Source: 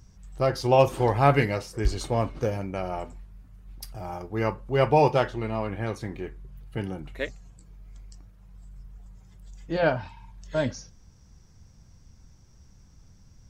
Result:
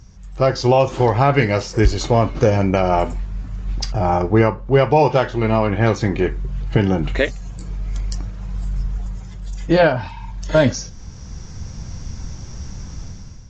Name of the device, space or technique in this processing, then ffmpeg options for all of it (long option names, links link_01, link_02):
low-bitrate web radio: -filter_complex "[0:a]asettb=1/sr,asplit=3[link_01][link_02][link_03];[link_01]atrim=end=3.924[link_04];[link_02]atrim=start=3.92:end=4.79,asetpts=PTS-STARTPTS,afade=type=in:duration=0.004:curve=qsin,afade=type=out:start_time=0.866:duration=0.004:curve=qsin,highshelf=frequency=3500:gain=-9.5[link_05];[link_03]atrim=start=4.786[link_06];[link_04][link_05]acrossfade=duration=0.004:curve1=hsin:curve2=qsin[link_07];[link_07][link_06]acrossfade=duration=0.004:curve1=qsin:curve2=hsin,dynaudnorm=framelen=520:gausssize=3:maxgain=14.5dB,alimiter=limit=-13dB:level=0:latency=1:release=446,volume=8.5dB" -ar 16000 -c:a aac -b:a 48k